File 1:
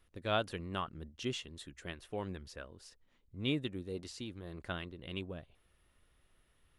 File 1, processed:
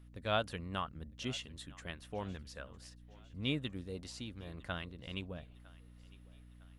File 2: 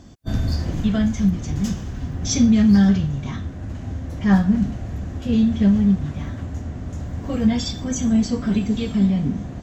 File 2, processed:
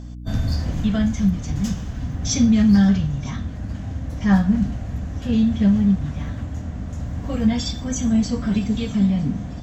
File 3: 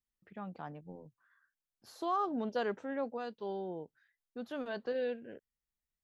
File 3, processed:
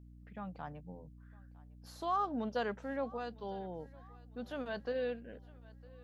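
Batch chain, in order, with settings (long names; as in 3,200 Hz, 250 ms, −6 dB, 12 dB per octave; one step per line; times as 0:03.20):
parametric band 360 Hz −8 dB 0.4 octaves
mains hum 60 Hz, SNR 14 dB
feedback echo with a high-pass in the loop 956 ms, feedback 51%, high-pass 340 Hz, level −22 dB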